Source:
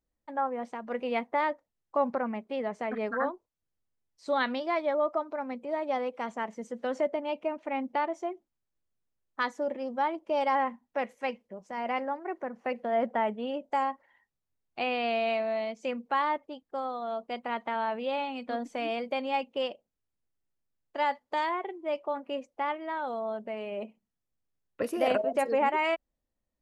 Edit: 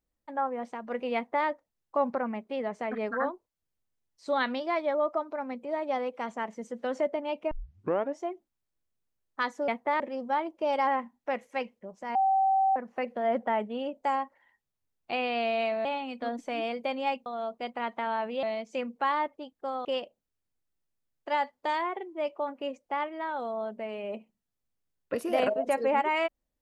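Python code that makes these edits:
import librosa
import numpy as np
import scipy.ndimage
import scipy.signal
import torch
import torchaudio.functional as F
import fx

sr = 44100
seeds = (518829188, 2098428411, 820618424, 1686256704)

y = fx.edit(x, sr, fx.duplicate(start_s=1.15, length_s=0.32, to_s=9.68),
    fx.tape_start(start_s=7.51, length_s=0.69),
    fx.bleep(start_s=11.83, length_s=0.61, hz=772.0, db=-21.0),
    fx.swap(start_s=15.53, length_s=1.42, other_s=18.12, other_length_s=1.41), tone=tone)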